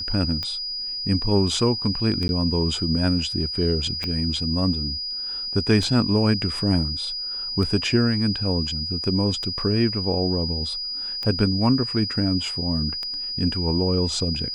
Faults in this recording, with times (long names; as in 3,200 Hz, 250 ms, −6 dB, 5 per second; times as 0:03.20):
scratch tick 33 1/3 rpm −16 dBFS
whistle 4,900 Hz −27 dBFS
0:02.28–0:02.29: drop-out 11 ms
0:04.04: click −15 dBFS